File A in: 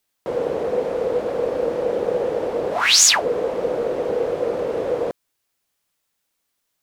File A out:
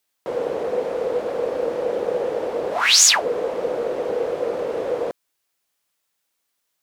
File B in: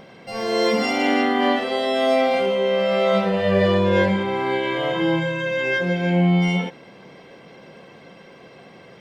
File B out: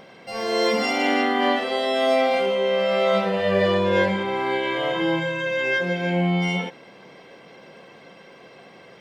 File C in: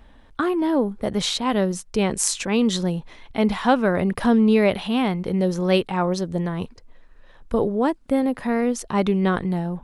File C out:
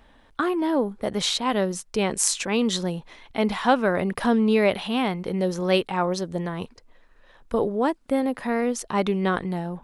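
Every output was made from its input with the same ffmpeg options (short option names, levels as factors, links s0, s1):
-af "lowshelf=f=230:g=-8"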